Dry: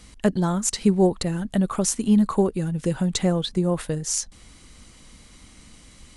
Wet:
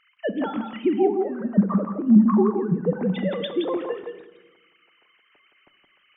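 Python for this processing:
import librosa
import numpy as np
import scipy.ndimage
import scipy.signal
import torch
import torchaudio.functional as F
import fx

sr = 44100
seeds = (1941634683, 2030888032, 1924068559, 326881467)

p1 = fx.sine_speech(x, sr)
p2 = fx.lowpass(p1, sr, hz=1400.0, slope=24, at=(1.07, 3.01))
p3 = p2 + fx.echo_single(p2, sr, ms=169, db=-5.5, dry=0)
y = fx.room_shoebox(p3, sr, seeds[0], volume_m3=590.0, walls='mixed', distance_m=0.41)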